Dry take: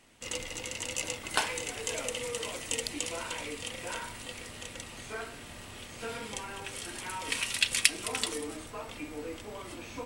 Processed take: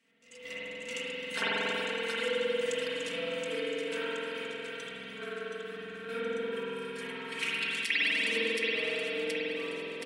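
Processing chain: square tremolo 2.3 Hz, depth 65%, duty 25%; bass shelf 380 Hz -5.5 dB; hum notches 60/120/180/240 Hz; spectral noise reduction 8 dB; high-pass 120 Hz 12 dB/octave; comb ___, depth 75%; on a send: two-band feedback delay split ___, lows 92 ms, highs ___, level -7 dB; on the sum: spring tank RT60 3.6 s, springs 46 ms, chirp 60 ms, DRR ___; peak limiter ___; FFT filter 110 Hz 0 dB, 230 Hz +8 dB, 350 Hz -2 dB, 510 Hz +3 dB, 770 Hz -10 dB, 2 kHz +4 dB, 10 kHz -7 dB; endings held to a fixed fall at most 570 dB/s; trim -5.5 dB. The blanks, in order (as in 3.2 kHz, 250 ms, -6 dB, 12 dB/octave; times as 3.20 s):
4.4 ms, 1.1 kHz, 723 ms, -8.5 dB, -15 dBFS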